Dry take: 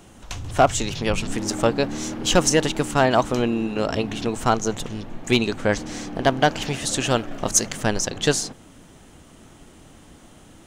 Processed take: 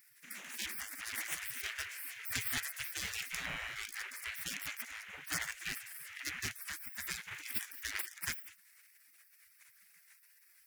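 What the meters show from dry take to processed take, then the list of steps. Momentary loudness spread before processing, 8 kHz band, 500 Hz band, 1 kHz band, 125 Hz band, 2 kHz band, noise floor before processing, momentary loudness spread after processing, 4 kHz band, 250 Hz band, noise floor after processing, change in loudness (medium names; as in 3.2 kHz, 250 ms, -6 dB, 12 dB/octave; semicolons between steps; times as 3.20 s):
8 LU, -16.5 dB, -38.5 dB, -27.0 dB, -28.0 dB, -11.0 dB, -49 dBFS, 6 LU, -15.5 dB, -32.5 dB, -66 dBFS, -17.5 dB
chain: comb filter that takes the minimum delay 0.3 ms; spectral gate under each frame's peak -30 dB weak; graphic EQ 125/250/500/1000/2000/4000/8000 Hz +9/+10/-9/-9/+9/-11/-4 dB; trim +5 dB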